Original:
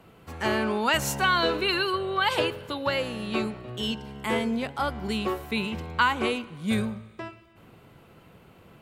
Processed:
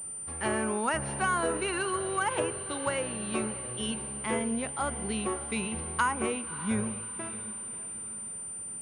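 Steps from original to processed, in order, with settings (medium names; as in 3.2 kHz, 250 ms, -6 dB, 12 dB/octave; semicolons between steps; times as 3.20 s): echo that smears into a reverb 597 ms, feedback 44%, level -15 dB; low-pass that closes with the level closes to 1.8 kHz, closed at -20 dBFS; class-D stage that switches slowly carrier 9.1 kHz; trim -4 dB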